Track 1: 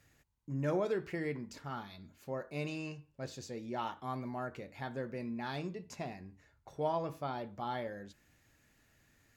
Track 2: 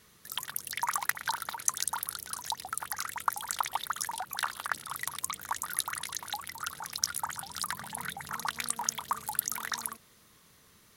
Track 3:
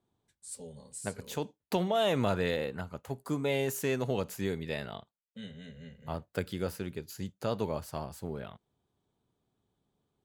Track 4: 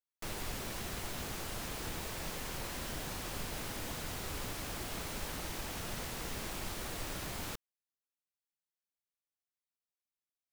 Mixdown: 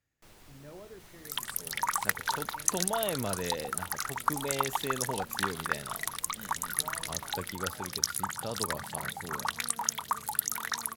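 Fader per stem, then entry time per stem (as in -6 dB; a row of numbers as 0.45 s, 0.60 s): -15.5 dB, +1.0 dB, -5.0 dB, -15.5 dB; 0.00 s, 1.00 s, 1.00 s, 0.00 s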